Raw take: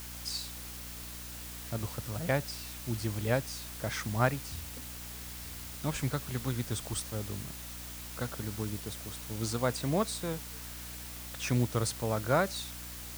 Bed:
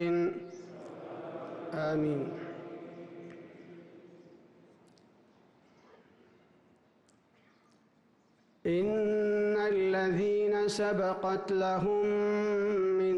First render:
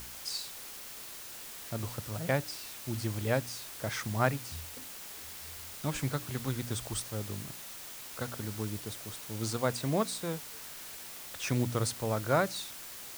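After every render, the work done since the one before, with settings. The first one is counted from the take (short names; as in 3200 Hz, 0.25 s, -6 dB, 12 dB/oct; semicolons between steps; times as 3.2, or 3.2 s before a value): de-hum 60 Hz, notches 5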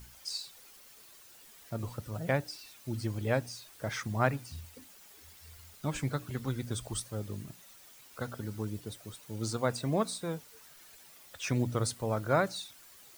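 denoiser 12 dB, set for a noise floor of -45 dBFS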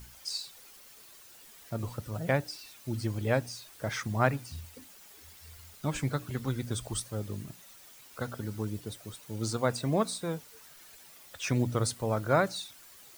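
gain +2 dB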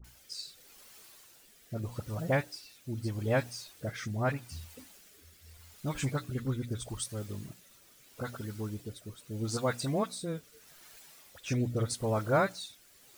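rotary speaker horn 0.8 Hz; dispersion highs, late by 44 ms, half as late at 1200 Hz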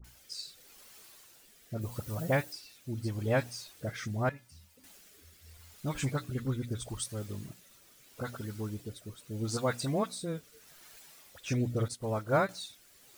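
1.81–2.53 high shelf 9300 Hz +10 dB; 4.29–4.84 resonator 190 Hz, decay 0.24 s, harmonics odd, mix 80%; 11.88–12.49 upward expander, over -46 dBFS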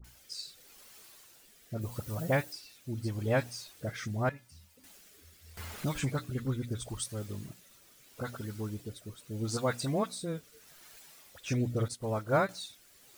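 5.57–6.19 three-band squash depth 70%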